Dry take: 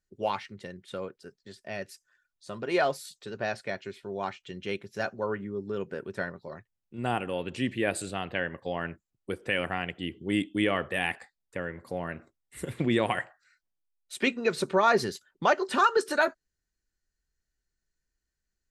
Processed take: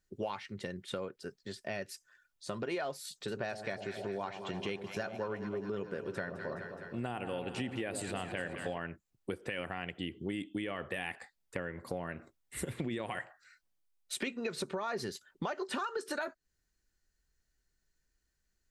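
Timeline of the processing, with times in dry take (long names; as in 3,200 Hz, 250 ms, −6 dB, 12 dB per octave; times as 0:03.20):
0:03.07–0:08.78: delay that swaps between a low-pass and a high-pass 105 ms, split 890 Hz, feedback 82%, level −11 dB
whole clip: brickwall limiter −18.5 dBFS; downward compressor 5 to 1, threshold −39 dBFS; level +4 dB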